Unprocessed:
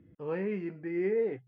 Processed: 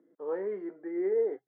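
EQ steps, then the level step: running mean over 17 samples; HPF 340 Hz 24 dB/oct; +2.5 dB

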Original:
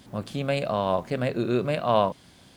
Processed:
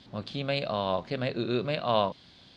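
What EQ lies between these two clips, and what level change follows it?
synth low-pass 4100 Hz, resonance Q 2.8; -4.5 dB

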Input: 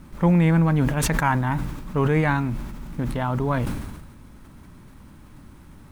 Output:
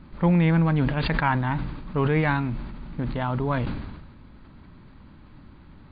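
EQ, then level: dynamic EQ 3100 Hz, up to +3 dB, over -39 dBFS, Q 1.1; brick-wall FIR low-pass 4800 Hz; -2.0 dB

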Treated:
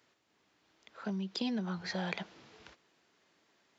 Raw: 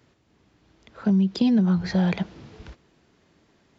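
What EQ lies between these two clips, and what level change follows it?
HPF 870 Hz 6 dB/oct; -4.0 dB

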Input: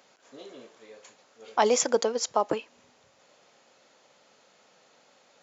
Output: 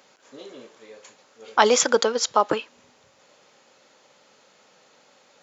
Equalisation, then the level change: notch 690 Hz, Q 12; dynamic EQ 3600 Hz, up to +7 dB, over -50 dBFS, Q 1.8; dynamic EQ 1400 Hz, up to +8 dB, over -47 dBFS, Q 2.1; +4.0 dB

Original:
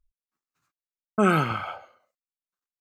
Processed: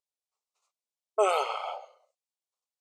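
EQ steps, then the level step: brick-wall FIR high-pass 380 Hz; LPF 9400 Hz 24 dB/oct; fixed phaser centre 670 Hz, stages 4; +3.5 dB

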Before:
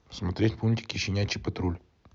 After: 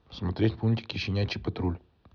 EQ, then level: Chebyshev low-pass 4000 Hz, order 3; notch 2100 Hz, Q 7.9; 0.0 dB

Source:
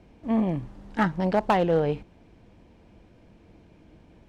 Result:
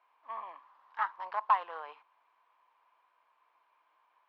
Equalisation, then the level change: ladder high-pass 1000 Hz, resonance 80%; air absorption 340 m; high shelf 4800 Hz +11.5 dB; +2.0 dB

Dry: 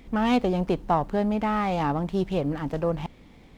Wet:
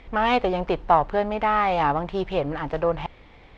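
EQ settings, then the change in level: LPF 3200 Hz 12 dB/oct; low shelf 170 Hz -4 dB; bell 220 Hz -13 dB 1.4 oct; +7.5 dB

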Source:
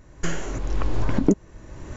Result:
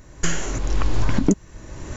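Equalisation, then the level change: high shelf 3600 Hz +7.5 dB; dynamic EQ 480 Hz, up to -6 dB, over -35 dBFS, Q 0.8; +3.5 dB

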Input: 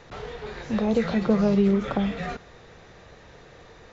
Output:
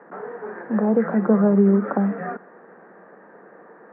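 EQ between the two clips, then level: Chebyshev band-pass 190–1700 Hz, order 4; +4.5 dB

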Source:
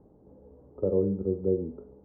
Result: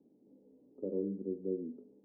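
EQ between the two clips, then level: ladder band-pass 290 Hz, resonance 55%; +1.0 dB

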